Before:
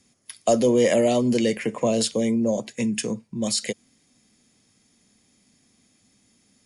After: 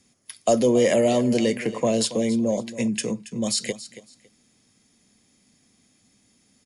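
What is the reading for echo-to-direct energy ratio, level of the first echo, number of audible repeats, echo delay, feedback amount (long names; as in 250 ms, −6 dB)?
−15.0 dB, −15.0 dB, 2, 278 ms, 22%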